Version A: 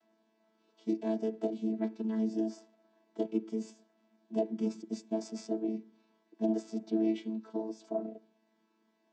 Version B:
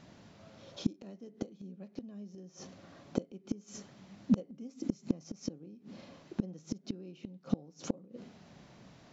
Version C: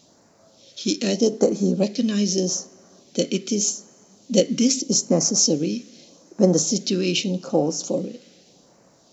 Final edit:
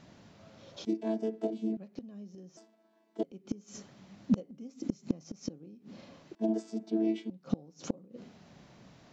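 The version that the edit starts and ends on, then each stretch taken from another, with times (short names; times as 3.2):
B
0.85–1.77 from A
2.57–3.23 from A
6.35–7.3 from A
not used: C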